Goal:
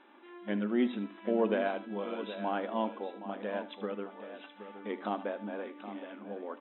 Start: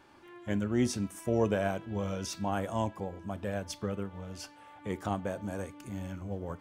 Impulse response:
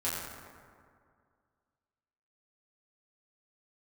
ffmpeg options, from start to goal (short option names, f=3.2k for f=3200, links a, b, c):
-filter_complex "[0:a]asplit=2[a][b];[b]aecho=0:1:77:0.168[c];[a][c]amix=inputs=2:normalize=0,afftfilt=real='re*between(b*sr/4096,200,4000)':imag='im*between(b*sr/4096,200,4000)':win_size=4096:overlap=0.75,asplit=2[d][e];[e]aecho=0:1:770:0.266[f];[d][f]amix=inputs=2:normalize=0"